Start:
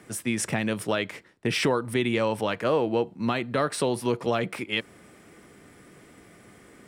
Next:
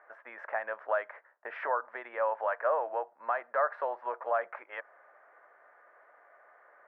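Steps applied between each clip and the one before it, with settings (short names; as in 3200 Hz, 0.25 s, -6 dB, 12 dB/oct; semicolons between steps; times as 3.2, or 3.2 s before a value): Chebyshev band-pass 590–1700 Hz, order 3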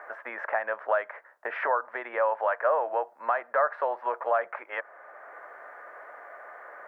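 three-band squash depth 40%; gain +5 dB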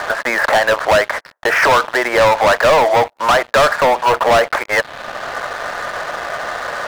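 sample leveller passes 5; gain +4.5 dB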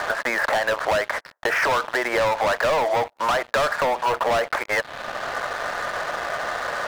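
compressor, threshold -16 dBFS, peak gain reduction 6.5 dB; gain -3.5 dB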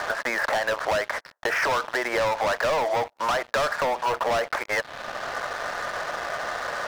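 bell 5500 Hz +3 dB 0.47 oct; gain -3 dB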